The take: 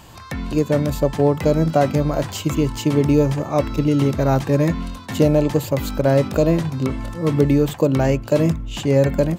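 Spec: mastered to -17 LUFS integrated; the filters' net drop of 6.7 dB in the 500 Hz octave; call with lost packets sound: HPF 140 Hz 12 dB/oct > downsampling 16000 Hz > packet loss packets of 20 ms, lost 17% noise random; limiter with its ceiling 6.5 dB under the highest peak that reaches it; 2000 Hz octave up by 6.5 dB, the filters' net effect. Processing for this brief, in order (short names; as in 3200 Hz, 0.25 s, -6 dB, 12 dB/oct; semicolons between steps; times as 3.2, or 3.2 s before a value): bell 500 Hz -8.5 dB; bell 2000 Hz +8.5 dB; limiter -11 dBFS; HPF 140 Hz 12 dB/oct; downsampling 16000 Hz; packet loss packets of 20 ms, lost 17% noise random; gain +7.5 dB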